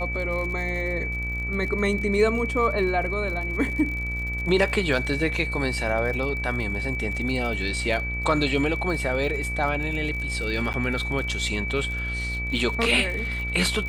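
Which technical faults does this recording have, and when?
buzz 60 Hz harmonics 33 -31 dBFS
crackle 56 per s -32 dBFS
whine 2.3 kHz -29 dBFS
10.73–10.74 s: dropout 9.3 ms

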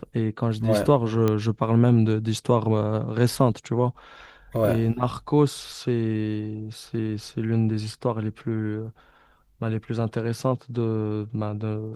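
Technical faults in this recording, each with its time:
1.28 s: pop -11 dBFS

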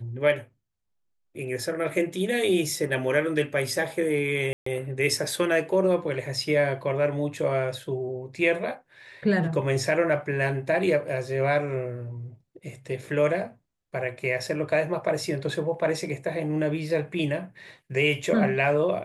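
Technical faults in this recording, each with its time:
4.53–4.66 s: dropout 134 ms

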